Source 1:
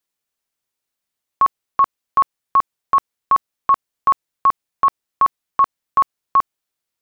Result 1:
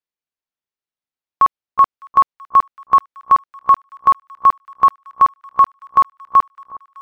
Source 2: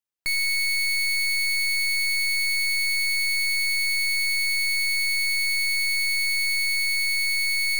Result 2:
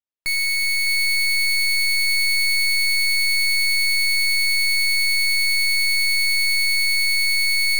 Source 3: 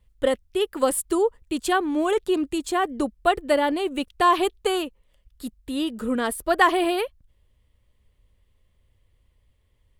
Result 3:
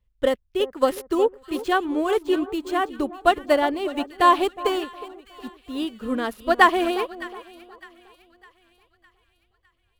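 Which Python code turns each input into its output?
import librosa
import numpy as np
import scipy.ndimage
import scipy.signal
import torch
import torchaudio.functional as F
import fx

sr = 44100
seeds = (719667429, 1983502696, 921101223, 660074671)

y = scipy.signal.medfilt(x, 5)
y = fx.echo_split(y, sr, split_hz=1300.0, low_ms=364, high_ms=607, feedback_pct=52, wet_db=-11.0)
y = fx.upward_expand(y, sr, threshold_db=-38.0, expansion=1.5)
y = y * 10.0 ** (3.5 / 20.0)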